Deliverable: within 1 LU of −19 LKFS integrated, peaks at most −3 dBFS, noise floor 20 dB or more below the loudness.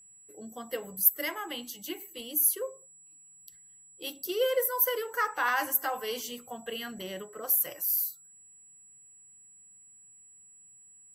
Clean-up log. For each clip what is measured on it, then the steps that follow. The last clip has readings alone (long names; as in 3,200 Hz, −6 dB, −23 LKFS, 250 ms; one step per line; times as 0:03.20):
interfering tone 7,800 Hz; level of the tone −53 dBFS; integrated loudness −29.0 LKFS; sample peak −8.5 dBFS; target loudness −19.0 LKFS
→ notch filter 7,800 Hz, Q 30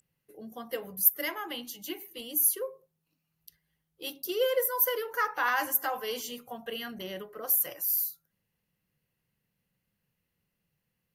interfering tone none found; integrated loudness −29.0 LKFS; sample peak −8.5 dBFS; target loudness −19.0 LKFS
→ level +10 dB
brickwall limiter −3 dBFS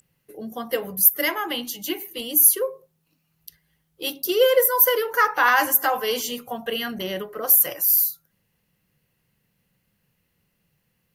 integrated loudness −19.5 LKFS; sample peak −3.0 dBFS; background noise floor −72 dBFS